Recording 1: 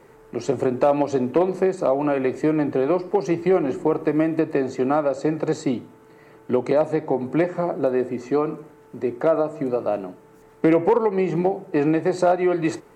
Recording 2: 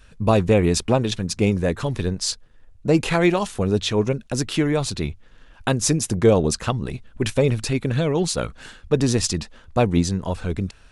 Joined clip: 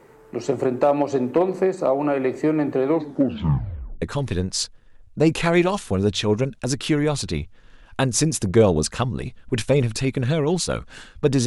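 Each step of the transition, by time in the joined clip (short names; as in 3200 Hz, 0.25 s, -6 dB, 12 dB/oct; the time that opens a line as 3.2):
recording 1
2.84 tape stop 1.18 s
4.02 switch to recording 2 from 1.7 s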